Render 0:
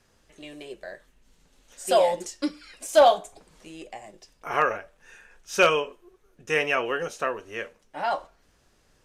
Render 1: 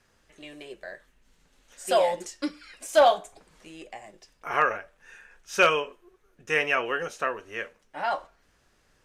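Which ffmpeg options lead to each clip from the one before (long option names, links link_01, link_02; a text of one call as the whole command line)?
ffmpeg -i in.wav -af "equalizer=frequency=1700:width_type=o:width=1.5:gain=4.5,volume=-3dB" out.wav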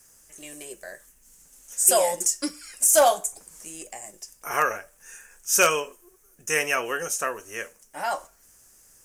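ffmpeg -i in.wav -af "aexciter=amount=6.2:drive=9.4:freq=5800" out.wav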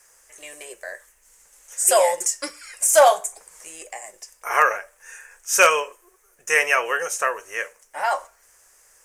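ffmpeg -i in.wav -af "equalizer=frequency=125:width_type=o:width=1:gain=-7,equalizer=frequency=250:width_type=o:width=1:gain=-9,equalizer=frequency=500:width_type=o:width=1:gain=9,equalizer=frequency=1000:width_type=o:width=1:gain=8,equalizer=frequency=2000:width_type=o:width=1:gain=10,equalizer=frequency=4000:width_type=o:width=1:gain=3,equalizer=frequency=8000:width_type=o:width=1:gain=4,volume=-4.5dB" out.wav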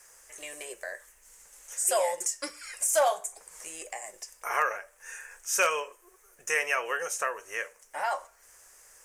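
ffmpeg -i in.wav -af "acompressor=threshold=-40dB:ratio=1.5" out.wav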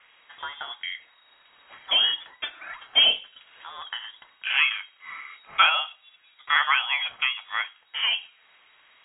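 ffmpeg -i in.wav -af "aexciter=amount=2.3:drive=3.9:freq=2500,lowpass=frequency=3200:width_type=q:width=0.5098,lowpass=frequency=3200:width_type=q:width=0.6013,lowpass=frequency=3200:width_type=q:width=0.9,lowpass=frequency=3200:width_type=q:width=2.563,afreqshift=-3800,volume=5dB" out.wav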